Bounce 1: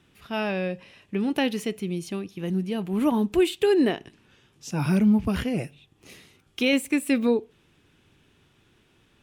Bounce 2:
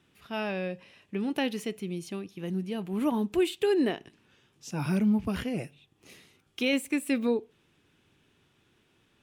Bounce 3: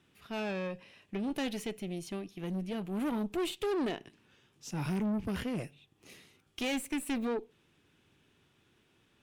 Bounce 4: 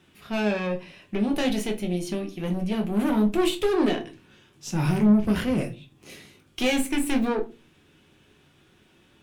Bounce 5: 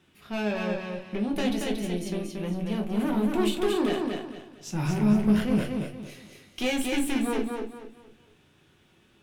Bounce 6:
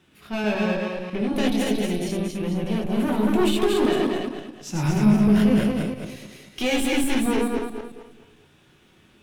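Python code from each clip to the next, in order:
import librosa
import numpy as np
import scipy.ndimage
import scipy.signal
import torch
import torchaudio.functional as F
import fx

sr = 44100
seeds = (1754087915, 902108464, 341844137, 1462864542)

y1 = fx.low_shelf(x, sr, hz=65.0, db=-9.0)
y1 = y1 * librosa.db_to_amplitude(-4.5)
y2 = fx.tube_stage(y1, sr, drive_db=29.0, bias=0.45)
y3 = fx.room_shoebox(y2, sr, seeds[0], volume_m3=120.0, walls='furnished', distance_m=1.0)
y3 = y3 * librosa.db_to_amplitude(7.5)
y4 = fx.echo_feedback(y3, sr, ms=230, feedback_pct=31, wet_db=-4)
y4 = y4 * librosa.db_to_amplitude(-4.0)
y5 = fx.reverse_delay(y4, sr, ms=110, wet_db=-2)
y5 = y5 * librosa.db_to_amplitude(3.0)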